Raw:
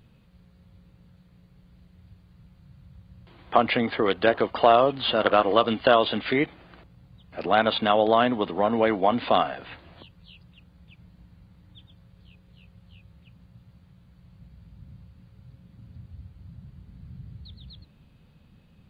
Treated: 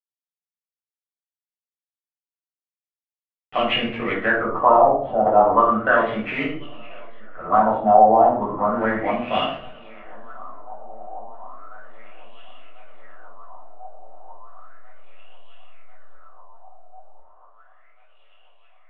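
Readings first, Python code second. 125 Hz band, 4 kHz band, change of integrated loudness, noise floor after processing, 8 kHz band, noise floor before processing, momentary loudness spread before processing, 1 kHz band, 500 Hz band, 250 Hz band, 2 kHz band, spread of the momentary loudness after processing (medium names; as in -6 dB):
0.0 dB, -2.0 dB, +4.0 dB, under -85 dBFS, no reading, -58 dBFS, 6 LU, +6.5 dB, +2.0 dB, +1.0 dB, +4.5 dB, 20 LU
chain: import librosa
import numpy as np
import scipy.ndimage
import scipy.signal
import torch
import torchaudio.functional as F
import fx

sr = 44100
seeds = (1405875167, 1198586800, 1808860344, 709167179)

p1 = scipy.signal.sosfilt(scipy.signal.butter(2, 4300.0, 'lowpass', fs=sr, output='sos'), x)
p2 = fx.backlash(p1, sr, play_db=-26.5)
p3 = p2 + fx.echo_thinned(p2, sr, ms=1043, feedback_pct=81, hz=260.0, wet_db=-23.0, dry=0)
p4 = fx.room_shoebox(p3, sr, seeds[0], volume_m3=600.0, walls='furnished', distance_m=6.5)
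p5 = fx.filter_lfo_lowpass(p4, sr, shape='sine', hz=0.34, low_hz=760.0, high_hz=2900.0, q=7.1)
y = p5 * 10.0 ** (-11.5 / 20.0)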